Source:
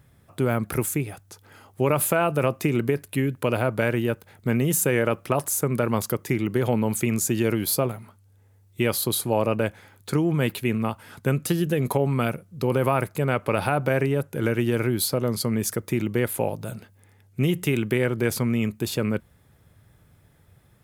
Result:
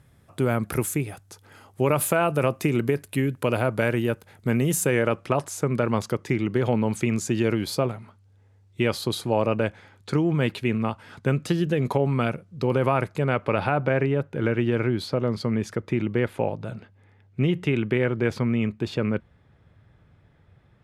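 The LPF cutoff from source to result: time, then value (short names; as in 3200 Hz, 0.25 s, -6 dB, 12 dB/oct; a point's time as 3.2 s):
4.61 s 12000 Hz
5.38 s 5600 Hz
13.12 s 5600 Hz
13.79 s 3300 Hz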